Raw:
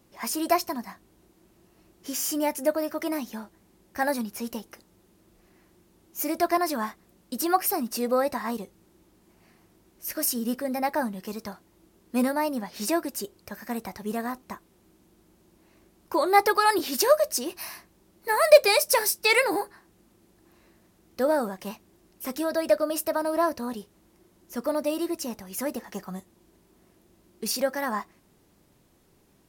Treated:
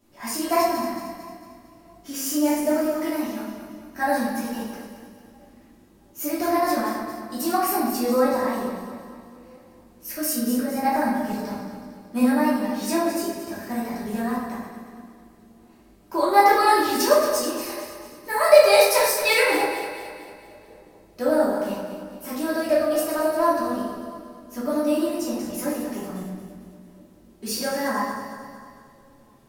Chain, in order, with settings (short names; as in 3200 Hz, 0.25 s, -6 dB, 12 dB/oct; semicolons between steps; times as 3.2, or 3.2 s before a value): regenerating reverse delay 0.113 s, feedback 69%, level -8.5 dB; darkening echo 0.661 s, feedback 50%, low-pass 910 Hz, level -21.5 dB; reverb RT60 0.80 s, pre-delay 3 ms, DRR -8.5 dB; gain -7 dB